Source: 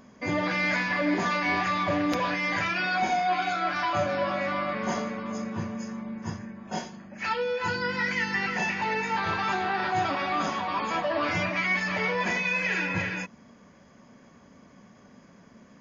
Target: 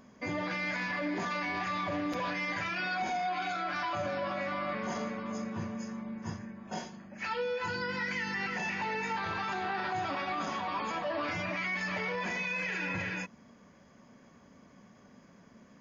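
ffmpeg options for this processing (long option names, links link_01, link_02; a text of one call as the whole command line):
ffmpeg -i in.wav -af "alimiter=limit=-22dB:level=0:latency=1:release=36,volume=-4dB" out.wav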